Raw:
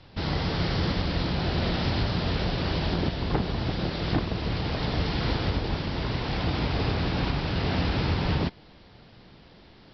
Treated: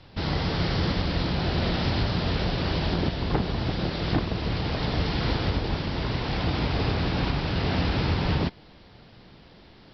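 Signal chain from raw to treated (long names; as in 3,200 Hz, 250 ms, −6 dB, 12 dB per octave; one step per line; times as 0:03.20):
floating-point word with a short mantissa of 8 bits
level +1 dB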